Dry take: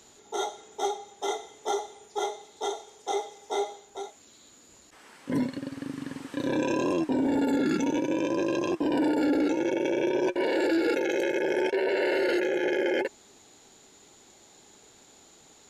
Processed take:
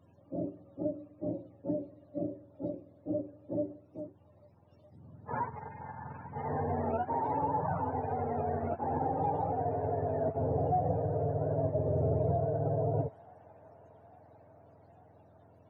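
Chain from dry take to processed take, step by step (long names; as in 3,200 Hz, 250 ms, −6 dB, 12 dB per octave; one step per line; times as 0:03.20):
frequency axis turned over on the octave scale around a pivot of 490 Hz
spectral peaks only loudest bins 64
delay with a high-pass on its return 850 ms, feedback 71%, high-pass 1,500 Hz, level −11 dB
level −3 dB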